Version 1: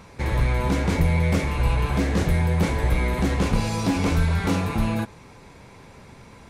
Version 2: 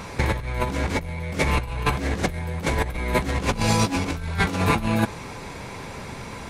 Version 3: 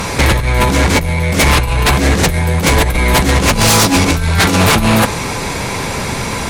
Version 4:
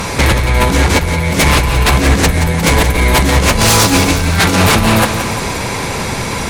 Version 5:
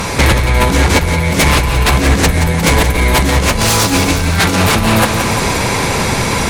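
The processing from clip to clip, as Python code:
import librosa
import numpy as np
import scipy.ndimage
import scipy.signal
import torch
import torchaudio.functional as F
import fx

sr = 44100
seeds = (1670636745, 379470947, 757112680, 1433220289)

y1 = fx.low_shelf(x, sr, hz=470.0, db=-3.5)
y1 = fx.over_compress(y1, sr, threshold_db=-29.0, ratio=-0.5)
y1 = y1 * 10.0 ** (6.5 / 20.0)
y2 = fx.high_shelf(y1, sr, hz=4300.0, db=7.5)
y2 = fx.fold_sine(y2, sr, drive_db=12, ceiling_db=-6.0)
y3 = fx.echo_feedback(y2, sr, ms=175, feedback_pct=57, wet_db=-9.5)
y4 = fx.rider(y3, sr, range_db=4, speed_s=0.5)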